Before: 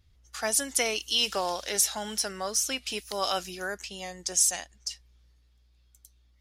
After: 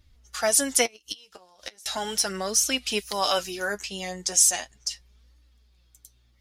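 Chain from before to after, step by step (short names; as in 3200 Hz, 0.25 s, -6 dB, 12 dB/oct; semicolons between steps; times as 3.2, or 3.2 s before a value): 0.84–1.86 flipped gate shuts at -19 dBFS, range -31 dB; flange 0.37 Hz, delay 3.2 ms, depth 8.2 ms, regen +32%; gain +8.5 dB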